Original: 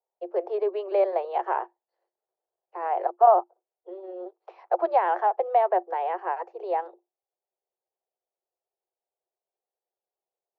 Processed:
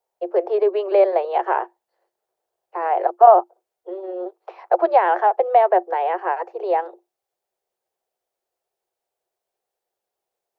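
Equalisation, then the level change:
dynamic equaliser 1,100 Hz, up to −4 dB, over −34 dBFS, Q 0.99
parametric band 1,500 Hz +2.5 dB 0.77 octaves
+8.5 dB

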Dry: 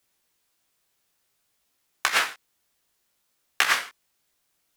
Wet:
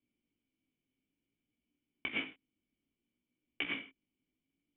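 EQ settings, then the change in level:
formant resonators in series i
high-frequency loss of the air 440 metres
+9.0 dB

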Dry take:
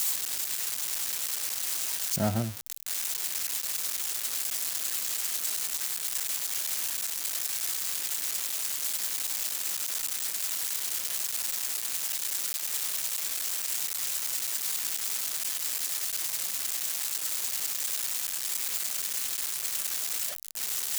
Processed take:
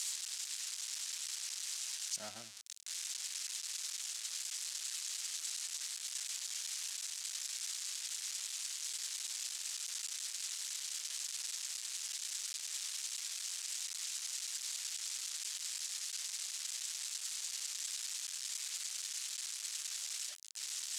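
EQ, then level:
resonant band-pass 7,100 Hz, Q 0.8
high-frequency loss of the air 71 metres
0.0 dB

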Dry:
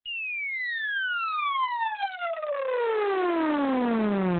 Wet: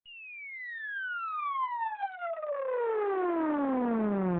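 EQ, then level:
low-pass filter 1,500 Hz 12 dB per octave
−4.0 dB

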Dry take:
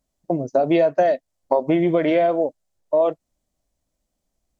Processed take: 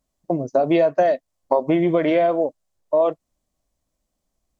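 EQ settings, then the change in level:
parametric band 1,100 Hz +5.5 dB 0.21 octaves
0.0 dB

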